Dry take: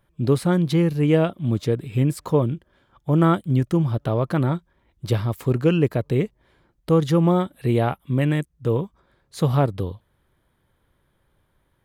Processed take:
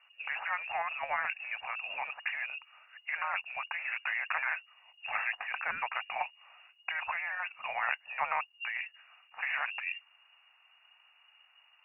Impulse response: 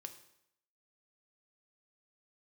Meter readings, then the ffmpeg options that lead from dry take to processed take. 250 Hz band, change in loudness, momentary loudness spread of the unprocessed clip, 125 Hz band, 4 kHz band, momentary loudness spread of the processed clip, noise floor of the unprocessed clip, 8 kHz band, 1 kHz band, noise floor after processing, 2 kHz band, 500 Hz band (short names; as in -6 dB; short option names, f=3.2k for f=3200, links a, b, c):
under -40 dB, -13.0 dB, 8 LU, under -40 dB, -6.5 dB, 6 LU, -68 dBFS, n/a, -5.5 dB, -66 dBFS, +5.0 dB, -25.5 dB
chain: -af "lowpass=f=2.5k:t=q:w=0.5098,lowpass=f=2.5k:t=q:w=0.6013,lowpass=f=2.5k:t=q:w=0.9,lowpass=f=2.5k:t=q:w=2.563,afreqshift=-2900,afftfilt=real='re*lt(hypot(re,im),0.141)':imag='im*lt(hypot(re,im),0.141)':win_size=1024:overlap=0.75,lowshelf=f=530:t=q:w=3:g=-13.5,volume=1.5dB"